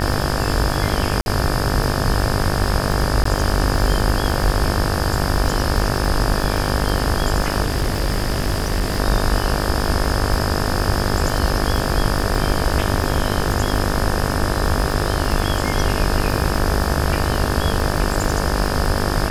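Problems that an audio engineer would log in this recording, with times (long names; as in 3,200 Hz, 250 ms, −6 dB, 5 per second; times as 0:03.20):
mains buzz 50 Hz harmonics 36 −23 dBFS
surface crackle 33 per second −22 dBFS
0:01.21–0:01.26: drop-out 51 ms
0:03.24–0:03.25: drop-out 14 ms
0:07.63–0:09.00: clipping −14.5 dBFS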